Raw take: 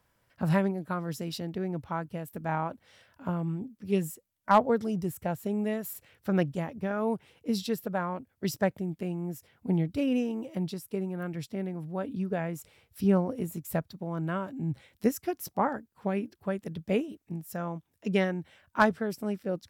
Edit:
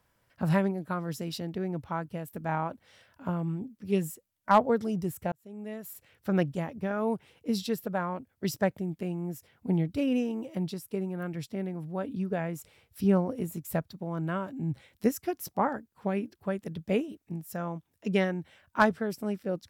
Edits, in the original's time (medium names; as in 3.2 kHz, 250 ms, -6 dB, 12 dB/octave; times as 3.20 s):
5.32–6.32 s: fade in